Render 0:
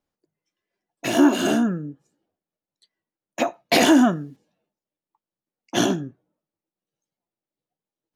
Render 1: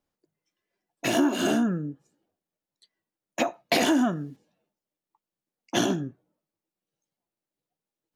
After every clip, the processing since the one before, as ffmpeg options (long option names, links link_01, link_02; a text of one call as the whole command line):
ffmpeg -i in.wav -af "acompressor=threshold=-21dB:ratio=3" out.wav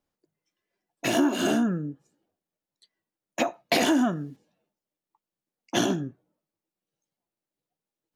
ffmpeg -i in.wav -af anull out.wav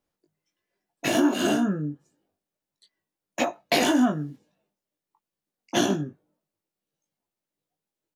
ffmpeg -i in.wav -filter_complex "[0:a]asplit=2[link_01][link_02];[link_02]adelay=20,volume=-5dB[link_03];[link_01][link_03]amix=inputs=2:normalize=0" out.wav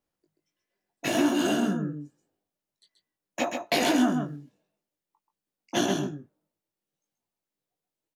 ffmpeg -i in.wav -af "aecho=1:1:132:0.531,volume=-3dB" out.wav